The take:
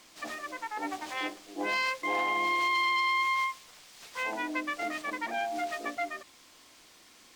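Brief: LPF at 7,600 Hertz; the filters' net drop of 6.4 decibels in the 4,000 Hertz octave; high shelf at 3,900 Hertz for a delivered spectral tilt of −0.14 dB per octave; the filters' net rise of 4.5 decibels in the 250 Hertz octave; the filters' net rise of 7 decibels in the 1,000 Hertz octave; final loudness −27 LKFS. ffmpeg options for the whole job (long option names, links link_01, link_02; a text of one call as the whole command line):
ffmpeg -i in.wav -af "lowpass=7600,equalizer=frequency=250:width_type=o:gain=5.5,equalizer=frequency=1000:width_type=o:gain=8,highshelf=frequency=3900:gain=-5.5,equalizer=frequency=4000:width_type=o:gain=-6" out.wav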